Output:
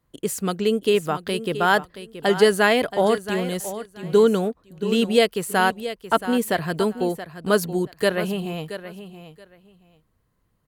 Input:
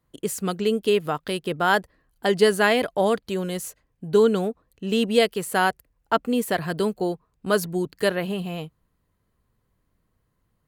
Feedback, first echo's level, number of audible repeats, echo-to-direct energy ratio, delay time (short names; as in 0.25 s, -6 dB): 18%, -12.5 dB, 2, -12.5 dB, 0.676 s